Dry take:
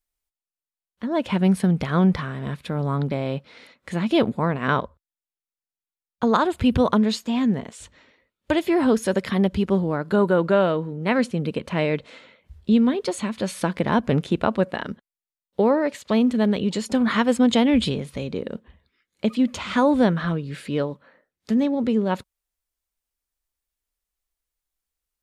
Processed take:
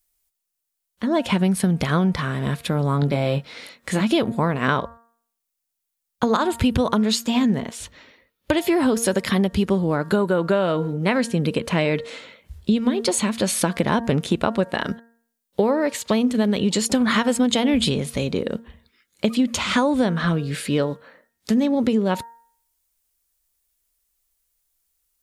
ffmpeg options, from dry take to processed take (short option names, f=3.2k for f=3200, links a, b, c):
-filter_complex "[0:a]asettb=1/sr,asplit=3[a][b][c];[a]atrim=end=3.004[d];[b]atrim=start=3:end=4.01,asetpts=PTS-STARTPTS,afade=t=in:d=0.004:c=qsin,afade=t=out:st=1.006:d=0.004:c=qsin,asplit=2[e][f];[f]adelay=21,volume=-7dB[g];[e][g]amix=inputs=2:normalize=0,atrim=end_sample=44541[h];[c]atrim=start=4.006[i];[d][h]acrossfade=d=0.004:c1=hsin:c2=qsin[j];[j][i]acrossfade=d=0.004:c1=qsin:c2=hsin,asettb=1/sr,asplit=3[k][l][m];[k]atrim=end=7.614[n];[l]atrim=start=7.61:end=8.57,asetpts=PTS-STARTPTS,afade=t=in:d=0.004:c=qsin,afade=t=out:st=0.956:d=0.004:c=qsin,equalizer=f=7.9k:w=1.9:g=-8.5[o];[m]atrim=start=8.566[p];[n][o]acrossfade=d=0.004:c1=hsin:c2=qsin[q];[q][p]acrossfade=d=0.004:c1=qsin:c2=hsin,highshelf=f=5.3k:g=11,bandreject=f=231.4:t=h:w=4,bandreject=f=462.8:t=h:w=4,bandreject=f=694.2:t=h:w=4,bandreject=f=925.6:t=h:w=4,bandreject=f=1.157k:t=h:w=4,bandreject=f=1.3884k:t=h:w=4,bandreject=f=1.6198k:t=h:w=4,bandreject=f=1.8512k:t=h:w=4,acompressor=threshold=-21dB:ratio=6,volume=5.5dB"